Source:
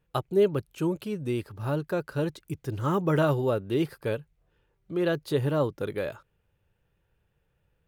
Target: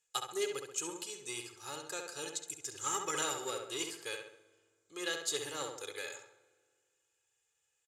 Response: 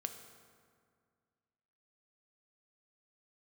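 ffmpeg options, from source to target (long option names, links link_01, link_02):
-filter_complex "[0:a]lowpass=frequency=7200:width_type=q:width=6.4,aecho=1:1:2.4:0.68,aeval=exprs='0.335*(cos(1*acos(clip(val(0)/0.335,-1,1)))-cos(1*PI/2))+0.0106*(cos(7*acos(clip(val(0)/0.335,-1,1)))-cos(7*PI/2))':channel_layout=same,aderivative,asplit=2[link_01][link_02];[link_02]adelay=67,lowpass=frequency=2800:poles=1,volume=-4dB,asplit=2[link_03][link_04];[link_04]adelay=67,lowpass=frequency=2800:poles=1,volume=0.5,asplit=2[link_05][link_06];[link_06]adelay=67,lowpass=frequency=2800:poles=1,volume=0.5,asplit=2[link_07][link_08];[link_08]adelay=67,lowpass=frequency=2800:poles=1,volume=0.5,asplit=2[link_09][link_10];[link_10]adelay=67,lowpass=frequency=2800:poles=1,volume=0.5,asplit=2[link_11][link_12];[link_12]adelay=67,lowpass=frequency=2800:poles=1,volume=0.5[link_13];[link_01][link_03][link_05][link_07][link_09][link_11][link_13]amix=inputs=7:normalize=0,asplit=2[link_14][link_15];[1:a]atrim=start_sample=2205[link_16];[link_15][link_16]afir=irnorm=-1:irlink=0,volume=-4.5dB[link_17];[link_14][link_17]amix=inputs=2:normalize=0,volume=2.5dB"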